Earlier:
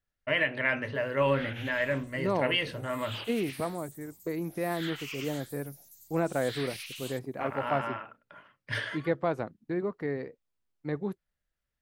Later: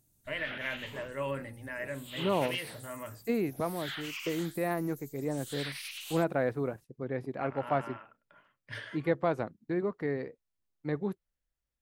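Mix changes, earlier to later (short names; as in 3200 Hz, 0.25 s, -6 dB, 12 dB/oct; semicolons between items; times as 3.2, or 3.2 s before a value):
first voice -9.0 dB; background: entry -0.95 s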